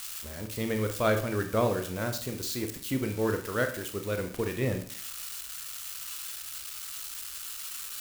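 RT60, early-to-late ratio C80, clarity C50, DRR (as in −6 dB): 0.50 s, 14.0 dB, 10.0 dB, 5.5 dB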